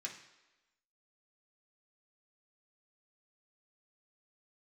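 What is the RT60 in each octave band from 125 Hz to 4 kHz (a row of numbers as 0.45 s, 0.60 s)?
0.65 s, 0.95 s, 1.1 s, 1.1 s, 1.1 s, 1.0 s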